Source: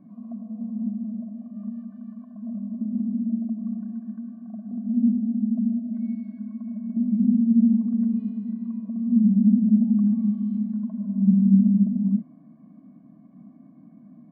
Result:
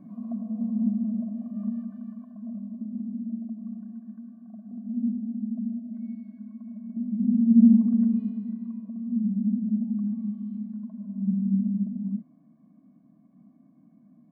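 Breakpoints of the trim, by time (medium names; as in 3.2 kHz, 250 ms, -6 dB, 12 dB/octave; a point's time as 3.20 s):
1.73 s +3 dB
2.90 s -7 dB
7.11 s -7 dB
7.67 s +3.5 dB
9.18 s -8 dB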